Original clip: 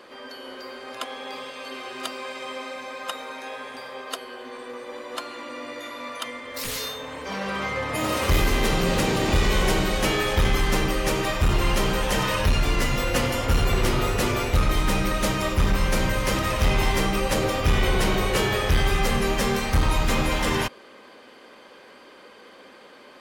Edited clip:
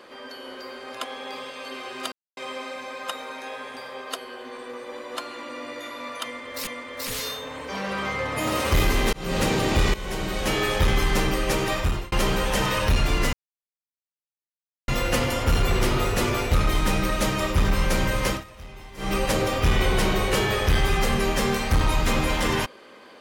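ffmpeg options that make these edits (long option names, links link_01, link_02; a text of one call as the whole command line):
ffmpeg -i in.wav -filter_complex "[0:a]asplit=10[link_01][link_02][link_03][link_04][link_05][link_06][link_07][link_08][link_09][link_10];[link_01]atrim=end=2.12,asetpts=PTS-STARTPTS,afade=type=out:start_time=2.116:duration=0.004:curve=hsin[link_11];[link_02]atrim=start=2.12:end=2.37,asetpts=PTS-STARTPTS,volume=0[link_12];[link_03]atrim=start=2.37:end=6.672,asetpts=PTS-STARTPTS,afade=type=in:duration=0.004:curve=hsin[link_13];[link_04]atrim=start=6.238:end=8.7,asetpts=PTS-STARTPTS,afade=type=out:start_time=2.458:duration=0.004:curve=hsin[link_14];[link_05]atrim=start=8.7:end=9.51,asetpts=PTS-STARTPTS,afade=type=in:duration=0.29,afade=type=out:start_time=0.806:duration=0.004:curve=hsin:silence=0.158489[link_15];[link_06]atrim=start=9.51:end=11.69,asetpts=PTS-STARTPTS,afade=type=in:duration=0.71:silence=0.158489,afade=type=out:start_time=1.84:duration=0.34[link_16];[link_07]atrim=start=11.69:end=12.9,asetpts=PTS-STARTPTS,afade=type=in:duration=0.004:curve=hsin,afade=type=out:start_time=1.206:duration=0.004:curve=hsin,apad=pad_dur=1.55[link_17];[link_08]atrim=start=12.9:end=16.46,asetpts=PTS-STARTPTS,afade=type=in:duration=0.004:curve=hsin,afade=type=out:start_time=3.4:duration=0.16:silence=0.0891251[link_18];[link_09]atrim=start=16.46:end=16.99,asetpts=PTS-STARTPTS,volume=-21dB[link_19];[link_10]atrim=start=16.99,asetpts=PTS-STARTPTS,afade=type=in:duration=0.16:silence=0.0891251[link_20];[link_11][link_12][link_13]concat=n=3:v=0:a=1[link_21];[link_14][link_15][link_16][link_17][link_18][link_19][link_20]concat=n=7:v=0:a=1[link_22];[link_21][link_22]acrossfade=duration=0.004:curve1=hsin:curve2=hsin" out.wav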